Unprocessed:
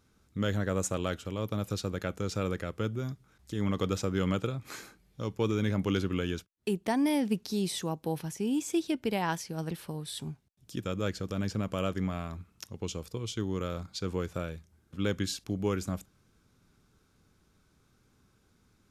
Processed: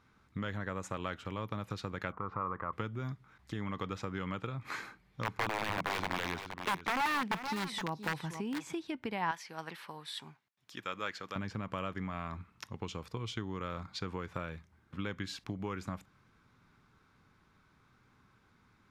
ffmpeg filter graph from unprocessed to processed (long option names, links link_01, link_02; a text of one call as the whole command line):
ffmpeg -i in.wav -filter_complex "[0:a]asettb=1/sr,asplit=3[link_01][link_02][link_03];[link_01]atrim=end=2.124[link_04];[link_02]atrim=start=2.12:end=2.73,asetpts=PTS-STARTPTS,afade=type=in:duration=0.004:curve=qsin,afade=type=out:start_time=0.606:duration=0.004:curve=qsin,lowpass=frequency=1100:width_type=q:width=7.4,acompressor=threshold=-46dB:ratio=1.5:attack=3.2:release=140:knee=1:detection=peak[link_05];[link_03]atrim=start=2.726[link_06];[link_04][link_05]acrossfade=duration=0.004:curve1=hsin:curve2=qsin[link_07];[link_07][link_06]acrossfade=duration=0.004:curve1=qsin:curve2=hsin,asettb=1/sr,asplit=3[link_08][link_09][link_10];[link_08]atrim=end=4.824[link_11];[link_09]atrim=start=4.82:end=8.73,asetpts=PTS-STARTPTS,afade=type=in:duration=0.004:curve=qsin,afade=type=out:start_time=3.906:duration=0.004:curve=qsin,aeval=exprs='(mod(14.1*val(0)+1,2)-1)/14.1':channel_layout=same,aecho=1:1:469:0.211,atrim=end_sample=172431[link_12];[link_10]atrim=start=8.726[link_13];[link_11][link_12]acrossfade=duration=0.004:curve1=hsin:curve2=qsin[link_14];[link_14][link_13]acrossfade=duration=0.004:curve1=qsin:curve2=hsin,asettb=1/sr,asplit=3[link_15][link_16][link_17];[link_15]atrim=end=9.314[link_18];[link_16]atrim=start=9.31:end=11.36,asetpts=PTS-STARTPTS,afade=type=in:duration=0.004:curve=qsin,afade=type=out:start_time=2.046:duration=0.004:curve=qsin,highpass=frequency=990:poles=1,equalizer=frequency=9200:width=5.3:gain=-3.5[link_19];[link_17]atrim=start=11.356[link_20];[link_18][link_19]acrossfade=duration=0.004:curve1=hsin:curve2=qsin[link_21];[link_21][link_20]acrossfade=duration=0.004:curve1=qsin:curve2=hsin,highshelf=frequency=3900:gain=-7,acompressor=threshold=-34dB:ratio=6,equalizer=frequency=125:width_type=o:width=1:gain=5,equalizer=frequency=250:width_type=o:width=1:gain=3,equalizer=frequency=1000:width_type=o:width=1:gain=11,equalizer=frequency=2000:width_type=o:width=1:gain=10,equalizer=frequency=4000:width_type=o:width=1:gain=5,volume=-5dB" out.wav